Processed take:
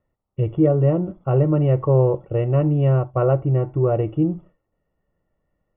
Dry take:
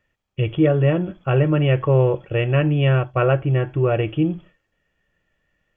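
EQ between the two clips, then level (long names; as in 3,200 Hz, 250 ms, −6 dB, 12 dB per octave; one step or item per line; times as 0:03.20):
Savitzky-Golay smoothing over 65 samples
0.0 dB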